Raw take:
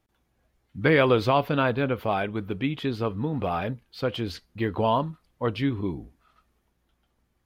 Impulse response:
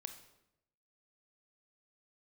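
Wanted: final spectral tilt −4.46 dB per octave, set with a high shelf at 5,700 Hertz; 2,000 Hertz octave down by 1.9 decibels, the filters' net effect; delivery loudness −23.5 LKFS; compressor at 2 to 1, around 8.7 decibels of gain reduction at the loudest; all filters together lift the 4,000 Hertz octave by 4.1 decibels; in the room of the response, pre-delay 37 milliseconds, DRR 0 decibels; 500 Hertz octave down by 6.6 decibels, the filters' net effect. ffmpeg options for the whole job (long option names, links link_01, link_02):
-filter_complex "[0:a]equalizer=frequency=500:width_type=o:gain=-8,equalizer=frequency=2000:width_type=o:gain=-3.5,equalizer=frequency=4000:width_type=o:gain=9,highshelf=frequency=5700:gain=-6,acompressor=threshold=-35dB:ratio=2,asplit=2[link_01][link_02];[1:a]atrim=start_sample=2205,adelay=37[link_03];[link_02][link_03]afir=irnorm=-1:irlink=0,volume=4dB[link_04];[link_01][link_04]amix=inputs=2:normalize=0,volume=8.5dB"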